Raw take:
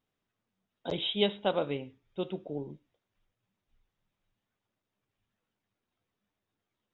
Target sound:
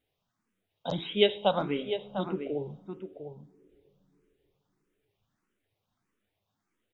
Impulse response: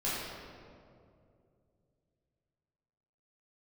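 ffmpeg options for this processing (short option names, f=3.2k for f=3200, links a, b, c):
-filter_complex "[0:a]asplit=2[a][b];[b]adelay=699.7,volume=-8dB,highshelf=f=4k:g=-15.7[c];[a][c]amix=inputs=2:normalize=0,asplit=2[d][e];[1:a]atrim=start_sample=2205,asetrate=32634,aresample=44100[f];[e][f]afir=irnorm=-1:irlink=0,volume=-29dB[g];[d][g]amix=inputs=2:normalize=0,asplit=2[h][i];[i]afreqshift=1.6[j];[h][j]amix=inputs=2:normalize=1,volume=5.5dB"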